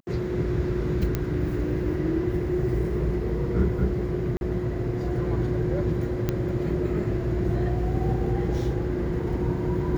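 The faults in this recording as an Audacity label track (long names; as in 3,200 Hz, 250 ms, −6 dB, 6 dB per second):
1.150000	1.150000	click −12 dBFS
4.370000	4.410000	drop-out 41 ms
6.290000	6.290000	click −12 dBFS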